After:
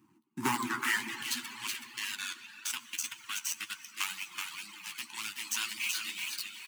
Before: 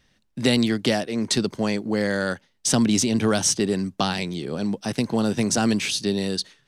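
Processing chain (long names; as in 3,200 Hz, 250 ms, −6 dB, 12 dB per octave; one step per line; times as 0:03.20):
running median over 25 samples
repeating echo 376 ms, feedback 17%, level −4 dB
high-pass filter sweep 340 Hz → 2,800 Hz, 0:00.19–0:01.15
0:01.86–0:03.96: output level in coarse steps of 19 dB
elliptic band-stop filter 330–920 Hz, stop band 40 dB
convolution reverb RT60 3.5 s, pre-delay 54 ms, DRR 4 dB
reverb reduction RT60 0.97 s
octave-band graphic EQ 125/500/1,000/4,000/8,000 Hz +11/+4/+4/−7/+3 dB
flanger 1.9 Hz, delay 8.9 ms, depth 4.8 ms, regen +38%
high-shelf EQ 5,600 Hz +6 dB
level +7 dB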